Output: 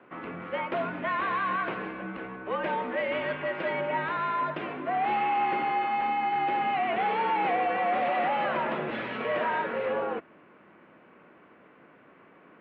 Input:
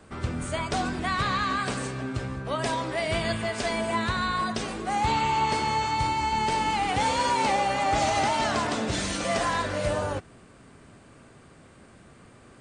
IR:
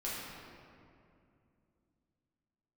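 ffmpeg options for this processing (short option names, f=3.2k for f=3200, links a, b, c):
-af "volume=22.5dB,asoftclip=hard,volume=-22.5dB,highpass=f=300:t=q:w=0.5412,highpass=f=300:t=q:w=1.307,lowpass=f=2.8k:t=q:w=0.5176,lowpass=f=2.8k:t=q:w=0.7071,lowpass=f=2.8k:t=q:w=1.932,afreqshift=-71"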